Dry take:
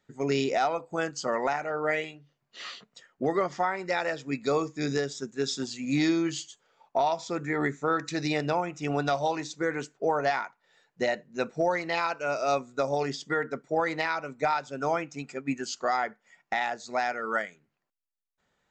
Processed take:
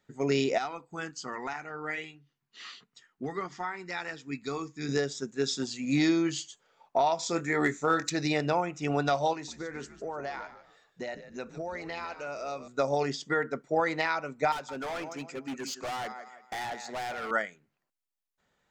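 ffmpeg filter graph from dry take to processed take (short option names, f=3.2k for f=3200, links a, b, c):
-filter_complex "[0:a]asettb=1/sr,asplit=3[a][b][c];[a]atrim=end=0.584[d];[b]atrim=start=0.58:end=4.89,asetpts=PTS-STARTPTS,afade=t=in:d=0.004:c=qsin,afade=t=out:st=4.306:d=0.004:c=qsin,equalizer=f=580:t=o:w=0.57:g=-14.5,flanger=delay=2.1:depth=2.7:regen=-76:speed=1.3:shape=triangular[e];[c]atrim=start=4.886[f];[d][e]acrossfade=d=0.004:c1=hsin:c2=qsin[g];[g][f]acrossfade=d=0.004:c1=qsin:c2=hsin,asettb=1/sr,asplit=3[h][i][j];[h]atrim=end=7.194[k];[i]atrim=start=7.19:end=8.1,asetpts=PTS-STARTPTS,afade=t=in:d=0.004:c=qsin,afade=t=out:st=0.906:d=0.004:c=qsin,highshelf=f=4.3k:g=11,asoftclip=type=hard:threshold=-16.5dB,asplit=2[l][m];[m]adelay=24,volume=-10dB[n];[l][n]amix=inputs=2:normalize=0,atrim=end_sample=40131[o];[j]atrim=start=8.096[p];[k][o]acrossfade=d=0.004:c1=hsin:c2=qsin[q];[q][p]acrossfade=d=0.004:c1=qsin:c2=hsin,asettb=1/sr,asplit=3[r][s][t];[r]atrim=end=9.334[u];[s]atrim=start=9.33:end=12.68,asetpts=PTS-STARTPTS,afade=t=in:d=0.004:c=qsin,afade=t=out:st=3.346:d=0.004:c=qsin,acompressor=threshold=-38dB:ratio=2.5:attack=3.2:release=140:knee=1:detection=peak,asplit=4[v][w][x][y];[w]adelay=149,afreqshift=-86,volume=-12.5dB[z];[x]adelay=298,afreqshift=-172,volume=-22.7dB[aa];[y]adelay=447,afreqshift=-258,volume=-32.8dB[ab];[v][z][aa][ab]amix=inputs=4:normalize=0,atrim=end_sample=147735[ac];[t]atrim=start=12.676[ad];[u][ac]acrossfade=d=0.004:c1=hsin:c2=qsin[ae];[ae][ad]acrossfade=d=0.004:c1=qsin:c2=hsin,asettb=1/sr,asplit=3[af][ag][ah];[af]atrim=end=14.524[ai];[ag]atrim=start=14.52:end=17.31,asetpts=PTS-STARTPTS,afade=t=in:d=0.004:c=qsin,afade=t=out:st=2.786:d=0.004:c=qsin,highpass=150,aecho=1:1:166|332|498:0.168|0.0604|0.0218,atrim=end_sample=123039,asoftclip=type=hard:threshold=-33dB[aj];[ah]atrim=start=17.306[ak];[ai][aj]acrossfade=d=0.004:c1=hsin:c2=qsin[al];[al][ak]acrossfade=d=0.004:c1=qsin:c2=hsin"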